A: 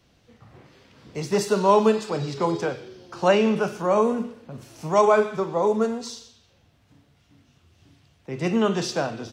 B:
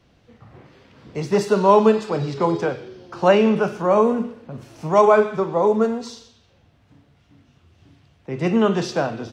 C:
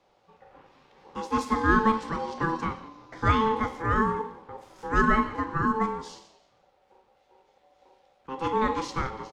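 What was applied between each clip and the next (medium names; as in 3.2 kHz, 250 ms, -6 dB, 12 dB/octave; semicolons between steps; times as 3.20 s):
treble shelf 4.4 kHz -10.5 dB; trim +4 dB
frequency-shifting echo 172 ms, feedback 34%, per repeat -66 Hz, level -20.5 dB; ring modulator 660 Hz; trim -5 dB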